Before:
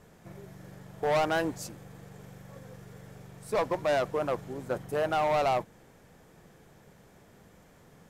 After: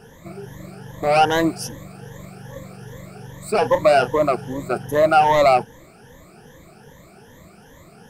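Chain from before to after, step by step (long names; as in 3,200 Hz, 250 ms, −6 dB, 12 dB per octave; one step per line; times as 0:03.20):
rippled gain that drifts along the octave scale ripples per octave 1.1, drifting +2.5 Hz, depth 18 dB
0:03.59–0:04.09: double-tracking delay 32 ms −10.5 dB
level +7.5 dB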